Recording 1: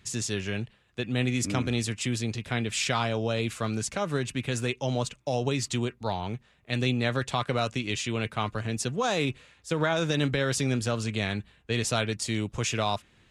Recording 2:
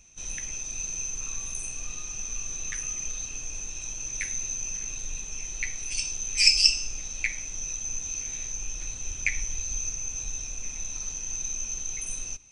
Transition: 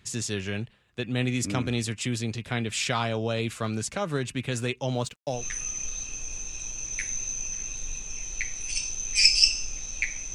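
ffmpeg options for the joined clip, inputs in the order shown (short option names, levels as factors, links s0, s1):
-filter_complex "[0:a]asettb=1/sr,asplit=3[s0][s1][s2];[s0]atrim=end=4.914[s3];[s1]atrim=start=4.91:end=5.45,asetpts=PTS-STARTPTS,afade=t=in:d=0.004:c=qsin,afade=t=out:st=0.536:d=0.004:c=qsin,aeval=exprs='sgn(val(0))*max(abs(val(0))-0.00168,0)':c=same[s4];[s2]atrim=start=5.446[s5];[s3][s4]acrossfade=d=0.004:c1=hsin:c2=qsin[s6];[s6][s5]acrossfade=d=0.004:c1=qsin:c2=hsin,apad=whole_dur=10.34,atrim=end=10.34,atrim=end=5.45,asetpts=PTS-STARTPTS[s7];[1:a]atrim=start=2.51:end=7.56,asetpts=PTS-STARTPTS[s8];[s7][s8]acrossfade=d=0.16:c1=tri:c2=tri"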